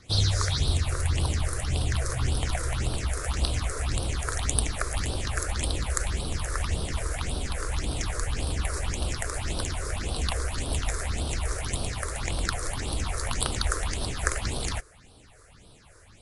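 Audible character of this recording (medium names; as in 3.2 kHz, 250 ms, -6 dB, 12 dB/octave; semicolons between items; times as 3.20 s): phasing stages 6, 1.8 Hz, lowest notch 200–2000 Hz; MP3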